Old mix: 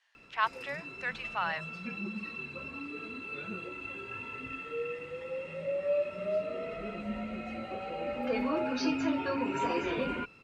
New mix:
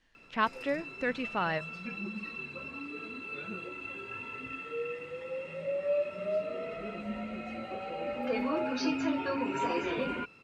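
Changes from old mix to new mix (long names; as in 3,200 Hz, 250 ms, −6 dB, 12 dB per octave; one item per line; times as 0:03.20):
speech: remove high-pass filter 740 Hz 24 dB per octave
master: add low-shelf EQ 71 Hz −8.5 dB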